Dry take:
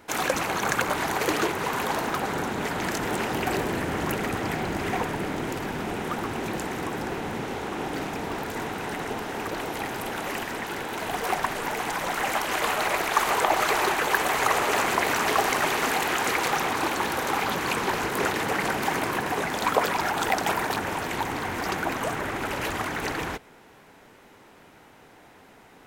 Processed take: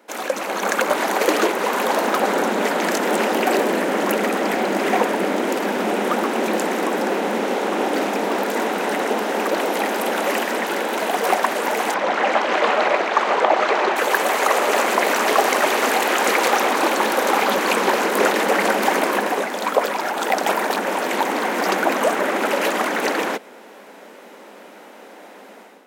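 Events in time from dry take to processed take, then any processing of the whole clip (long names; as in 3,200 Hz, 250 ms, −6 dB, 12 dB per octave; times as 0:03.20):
0:11.94–0:13.96: high-frequency loss of the air 150 metres
whole clip: automatic gain control; elliptic high-pass filter 200 Hz, stop band 40 dB; parametric band 560 Hz +7 dB 0.41 octaves; level −2 dB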